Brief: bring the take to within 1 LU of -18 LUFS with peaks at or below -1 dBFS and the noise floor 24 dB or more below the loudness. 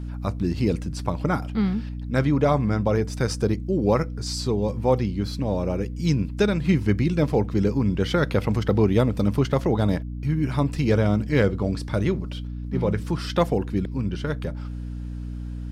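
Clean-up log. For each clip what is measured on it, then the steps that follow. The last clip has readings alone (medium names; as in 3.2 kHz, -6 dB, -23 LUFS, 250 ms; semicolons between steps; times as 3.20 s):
hum 60 Hz; highest harmonic 300 Hz; hum level -29 dBFS; loudness -24.0 LUFS; peak level -7.0 dBFS; loudness target -18.0 LUFS
-> de-hum 60 Hz, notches 5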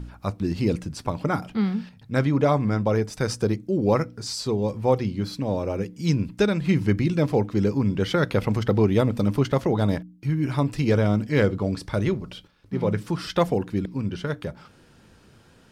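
hum not found; loudness -24.5 LUFS; peak level -8.0 dBFS; loudness target -18.0 LUFS
-> trim +6.5 dB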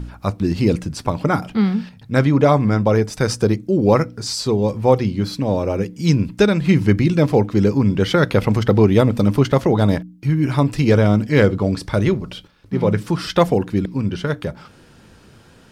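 loudness -18.0 LUFS; peak level -1.5 dBFS; noise floor -48 dBFS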